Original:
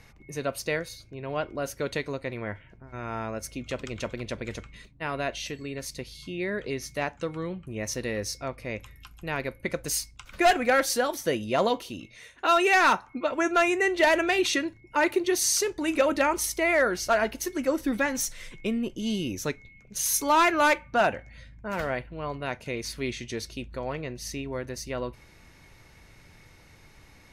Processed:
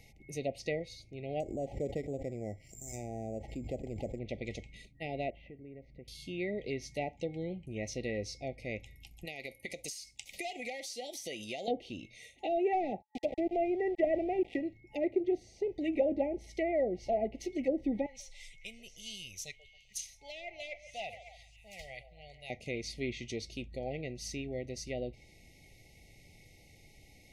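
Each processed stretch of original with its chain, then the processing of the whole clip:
0:01.40–0:04.19: bad sample-rate conversion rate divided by 6×, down none, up zero stuff + background raised ahead of every attack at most 86 dB per second
0:05.30–0:06.08: low-pass filter 1,700 Hz 24 dB per octave + downward compressor 2 to 1, threshold −47 dBFS
0:09.25–0:11.68: spectral tilt +3 dB per octave + downward compressor 5 to 1, threshold −31 dBFS
0:13.02–0:14.61: Savitzky-Golay smoothing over 25 samples + centre clipping without the shift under −30 dBFS
0:18.06–0:22.50: guitar amp tone stack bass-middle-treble 10-0-10 + echo through a band-pass that steps 138 ms, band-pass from 560 Hz, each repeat 0.7 octaves, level −10 dB
whole clip: treble cut that deepens with the level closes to 900 Hz, closed at −22 dBFS; brick-wall band-stop 860–1,900 Hz; high-shelf EQ 7,200 Hz +4.5 dB; level −5 dB

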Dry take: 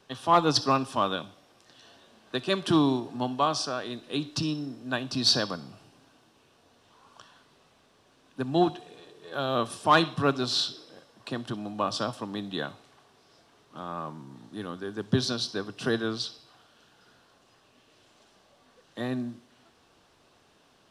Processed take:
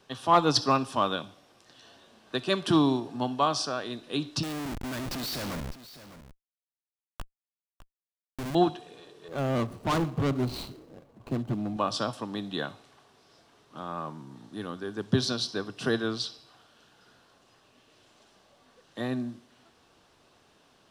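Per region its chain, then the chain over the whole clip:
0:04.43–0:08.55: comparator with hysteresis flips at −40 dBFS + single-tap delay 605 ms −15 dB
0:09.28–0:11.77: running median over 25 samples + low-shelf EQ 200 Hz +11.5 dB + gain into a clipping stage and back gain 23.5 dB
whole clip: no processing

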